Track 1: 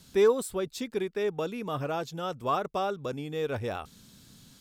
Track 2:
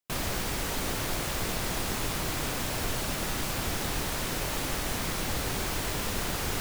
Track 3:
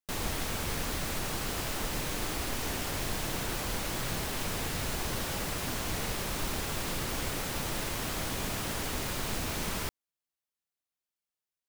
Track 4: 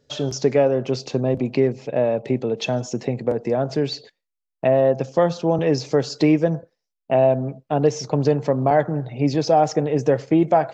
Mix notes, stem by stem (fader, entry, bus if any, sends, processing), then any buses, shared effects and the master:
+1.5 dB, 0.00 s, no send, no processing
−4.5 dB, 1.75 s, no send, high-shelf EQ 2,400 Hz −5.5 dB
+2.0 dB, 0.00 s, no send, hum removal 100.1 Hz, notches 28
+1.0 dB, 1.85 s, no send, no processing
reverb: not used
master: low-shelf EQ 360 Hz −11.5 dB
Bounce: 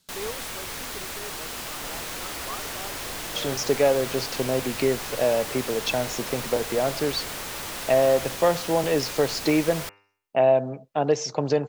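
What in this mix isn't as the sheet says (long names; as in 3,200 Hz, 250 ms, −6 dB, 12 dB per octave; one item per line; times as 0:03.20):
stem 1 +1.5 dB → −8.5 dB
stem 4: entry 1.85 s → 3.25 s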